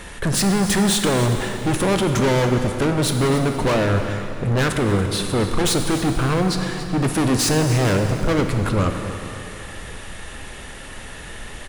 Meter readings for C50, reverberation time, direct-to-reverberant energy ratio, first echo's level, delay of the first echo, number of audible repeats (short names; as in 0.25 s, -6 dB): 5.5 dB, 2.9 s, 4.5 dB, -14.5 dB, 0.284 s, 1